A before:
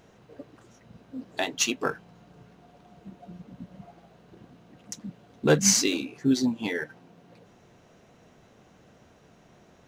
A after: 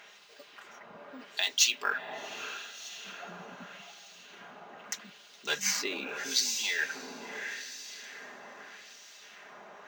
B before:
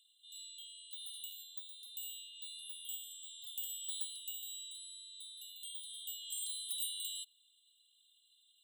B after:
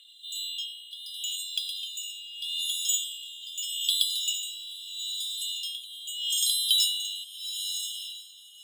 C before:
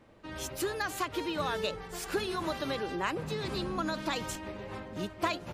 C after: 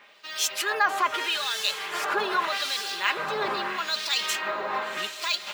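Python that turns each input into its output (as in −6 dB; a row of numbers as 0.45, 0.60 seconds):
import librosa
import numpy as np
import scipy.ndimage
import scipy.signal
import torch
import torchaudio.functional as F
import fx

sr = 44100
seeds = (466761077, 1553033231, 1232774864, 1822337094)

p1 = (np.kron(x[::2], np.eye(2)[0]) * 2)[:len(x)]
p2 = fx.over_compress(p1, sr, threshold_db=-33.0, ratio=-1.0)
p3 = p1 + F.gain(torch.from_numpy(p2), 2.0).numpy()
p4 = fx.low_shelf(p3, sr, hz=400.0, db=-10.0)
p5 = p4 + fx.echo_diffused(p4, sr, ms=718, feedback_pct=47, wet_db=-9, dry=0)
p6 = fx.filter_lfo_bandpass(p5, sr, shape='sine', hz=0.8, low_hz=980.0, high_hz=4800.0, q=1.1)
p7 = p6 + 0.45 * np.pad(p6, (int(4.9 * sr / 1000.0), 0))[:len(p6)]
y = librosa.util.normalize(p7) * 10.0 ** (-9 / 20.0)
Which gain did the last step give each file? +1.5, +12.0, +9.0 decibels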